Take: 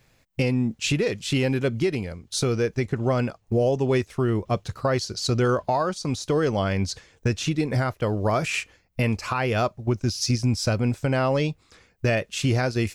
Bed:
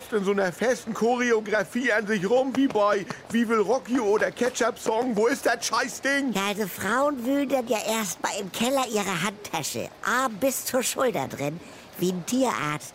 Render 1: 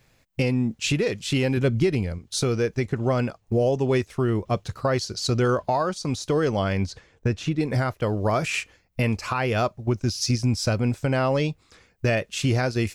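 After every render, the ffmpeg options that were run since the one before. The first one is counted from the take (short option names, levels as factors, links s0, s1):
-filter_complex "[0:a]asettb=1/sr,asplit=3[s0][s1][s2];[s0]atrim=end=1.574[s3];[s1]atrim=start=1.57:end=2.19,asetpts=PTS-STARTPTS,afade=t=in:d=0.004:c=qsin,afade=t=out:st=0.616:d=0.004:c=qsin,lowshelf=f=170:g=8.5[s4];[s2]atrim=start=2.186[s5];[s3][s4]acrossfade=d=0.004:c1=hsin:c2=qsin[s6];[s6][s5]acrossfade=d=0.004:c1=qsin:c2=hsin,asettb=1/sr,asplit=3[s7][s8][s9];[s7]atrim=end=6.864[s10];[s8]atrim=start=6.86:end=7.61,asetpts=PTS-STARTPTS,afade=t=in:d=0.004:c=qsin,afade=t=out:st=0.746:d=0.004:c=qsin,highshelf=f=3400:g=-11[s11];[s9]atrim=start=7.606[s12];[s10][s11]acrossfade=d=0.004:c1=hsin:c2=qsin[s13];[s13][s12]acrossfade=d=0.004:c1=qsin:c2=hsin"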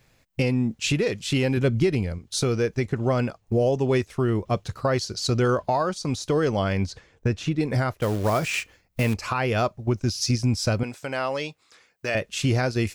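-filter_complex "[0:a]asettb=1/sr,asplit=3[s0][s1][s2];[s0]atrim=end=7.984[s3];[s1]atrim=start=7.98:end=9.14,asetpts=PTS-STARTPTS,afade=t=in:d=0.004:c=qsin,afade=t=out:st=1.156:d=0.004:c=qsin,acrusher=bits=4:mode=log:mix=0:aa=0.000001[s4];[s2]atrim=start=9.136[s5];[s3][s4]acrossfade=d=0.004:c1=hsin:c2=qsin[s6];[s6][s5]acrossfade=d=0.004:c1=qsin:c2=hsin,asettb=1/sr,asplit=3[s7][s8][s9];[s7]atrim=end=10.834[s10];[s8]atrim=start=10.83:end=12.15,asetpts=PTS-STARTPTS,afade=t=in:d=0.004:c=qsin,afade=t=out:st=1.316:d=0.004:c=qsin,highpass=f=760:p=1[s11];[s9]atrim=start=12.146[s12];[s10][s11]acrossfade=d=0.004:c1=hsin:c2=qsin[s13];[s13][s12]acrossfade=d=0.004:c1=qsin:c2=hsin"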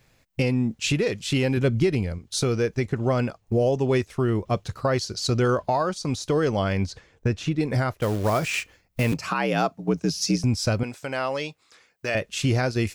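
-filter_complex "[0:a]asettb=1/sr,asplit=3[s0][s1][s2];[s0]atrim=end=9.124[s3];[s1]atrim=start=9.12:end=10.44,asetpts=PTS-STARTPTS,afade=t=in:d=0.004:c=qsin,afade=t=out:st=1.316:d=0.004:c=qsin,afreqshift=65[s4];[s2]atrim=start=10.436[s5];[s3][s4]acrossfade=d=0.004:c1=hsin:c2=qsin[s6];[s6][s5]acrossfade=d=0.004:c1=qsin:c2=hsin"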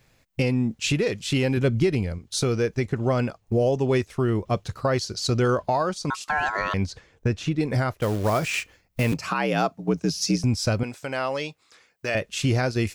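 -filter_complex "[0:a]asettb=1/sr,asplit=3[s0][s1][s2];[s0]atrim=end=6.104[s3];[s1]atrim=start=6.1:end=6.74,asetpts=PTS-STARTPTS,afade=t=in:d=0.004:c=qsin,afade=t=out:st=0.636:d=0.004:c=qsin,aeval=exprs='val(0)*sin(2*PI*1200*n/s)':c=same[s4];[s2]atrim=start=6.736[s5];[s3][s4]acrossfade=d=0.004:c1=hsin:c2=qsin[s6];[s6][s5]acrossfade=d=0.004:c1=qsin:c2=hsin"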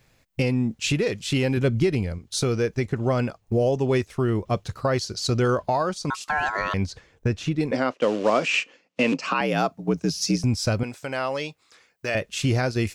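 -filter_complex "[0:a]asettb=1/sr,asplit=3[s0][s1][s2];[s0]atrim=end=7.714[s3];[s1]atrim=start=7.71:end=9.41,asetpts=PTS-STARTPTS,afade=t=in:d=0.004:c=qsin,afade=t=out:st=1.696:d=0.004:c=qsin,highpass=f=200:w=0.5412,highpass=f=200:w=1.3066,equalizer=f=260:t=q:w=4:g=7,equalizer=f=520:t=q:w=4:g=7,equalizer=f=1100:t=q:w=4:g=3,equalizer=f=2800:t=q:w=4:g=8,lowpass=f=7200:w=0.5412,lowpass=f=7200:w=1.3066[s4];[s2]atrim=start=9.406[s5];[s3][s4]acrossfade=d=0.004:c1=hsin:c2=qsin[s6];[s6][s5]acrossfade=d=0.004:c1=qsin:c2=hsin"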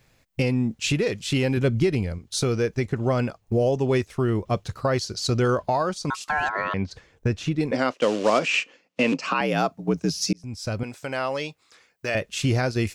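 -filter_complex "[0:a]asplit=3[s0][s1][s2];[s0]afade=t=out:st=6.48:d=0.02[s3];[s1]highpass=110,lowpass=2900,afade=t=in:st=6.48:d=0.02,afade=t=out:st=6.9:d=0.02[s4];[s2]afade=t=in:st=6.9:d=0.02[s5];[s3][s4][s5]amix=inputs=3:normalize=0,asettb=1/sr,asplit=3[s6][s7][s8];[s6]atrim=end=7.794[s9];[s7]atrim=start=7.79:end=8.39,asetpts=PTS-STARTPTS,afade=t=in:d=0.004:c=qsin,afade=t=out:st=0.596:d=0.004:c=qsin,highshelf=f=3100:g=8[s10];[s8]atrim=start=8.386[s11];[s9][s10]acrossfade=d=0.004:c1=hsin:c2=qsin[s12];[s12][s11]acrossfade=d=0.004:c1=qsin:c2=hsin,asplit=2[s13][s14];[s13]atrim=end=10.33,asetpts=PTS-STARTPTS,afade=t=out:st=10.326:d=0.004:c=hsin[s15];[s14]atrim=start=10.33,asetpts=PTS-STARTPTS,afade=t=in:d=0.69[s16];[s15][s16]concat=n=2:v=0:a=1"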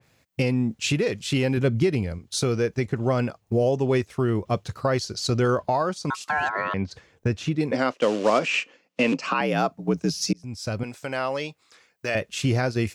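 -af "highpass=74,adynamicequalizer=threshold=0.0158:dfrequency=2400:dqfactor=0.7:tfrequency=2400:tqfactor=0.7:attack=5:release=100:ratio=0.375:range=1.5:mode=cutabove:tftype=highshelf"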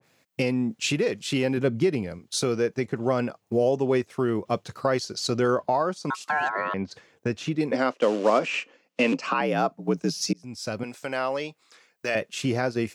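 -af "highpass=180,adynamicequalizer=threshold=0.0141:dfrequency=1700:dqfactor=0.7:tfrequency=1700:tqfactor=0.7:attack=5:release=100:ratio=0.375:range=3:mode=cutabove:tftype=highshelf"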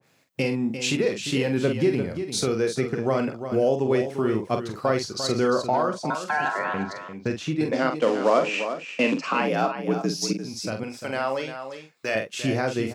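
-filter_complex "[0:a]asplit=2[s0][s1];[s1]adelay=45,volume=0.447[s2];[s0][s2]amix=inputs=2:normalize=0,asplit=2[s3][s4];[s4]aecho=0:1:348:0.335[s5];[s3][s5]amix=inputs=2:normalize=0"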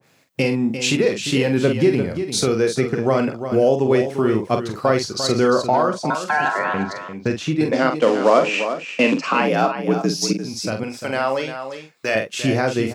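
-af "volume=1.88"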